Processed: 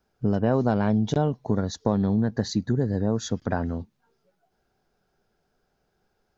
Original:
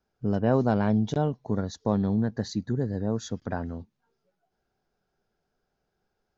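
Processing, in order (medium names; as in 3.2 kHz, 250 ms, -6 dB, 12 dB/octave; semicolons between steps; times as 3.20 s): compression 3:1, threshold -25 dBFS, peak gain reduction 6.5 dB; trim +6 dB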